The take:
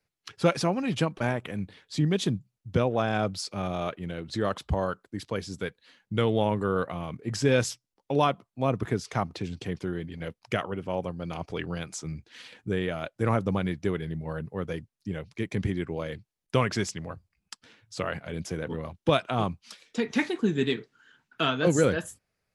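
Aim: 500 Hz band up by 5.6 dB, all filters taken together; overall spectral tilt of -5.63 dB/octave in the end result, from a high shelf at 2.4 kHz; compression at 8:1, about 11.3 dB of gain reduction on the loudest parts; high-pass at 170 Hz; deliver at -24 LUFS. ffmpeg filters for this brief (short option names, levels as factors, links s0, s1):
-af "highpass=170,equalizer=f=500:t=o:g=7,highshelf=f=2400:g=-7.5,acompressor=threshold=0.0562:ratio=8,volume=2.82"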